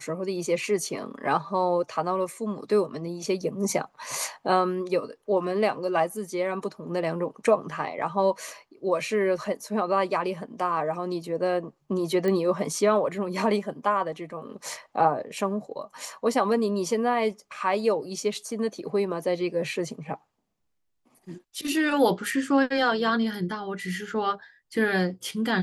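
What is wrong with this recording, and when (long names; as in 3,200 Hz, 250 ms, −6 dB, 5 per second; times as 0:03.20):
0:12.28: click −16 dBFS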